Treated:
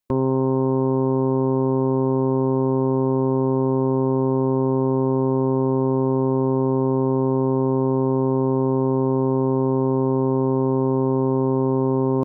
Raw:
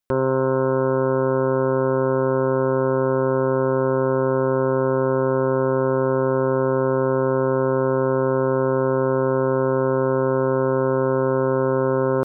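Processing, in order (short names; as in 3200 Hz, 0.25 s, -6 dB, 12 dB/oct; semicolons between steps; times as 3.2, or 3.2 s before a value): formant shift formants -5 st; notch 1400 Hz, Q 12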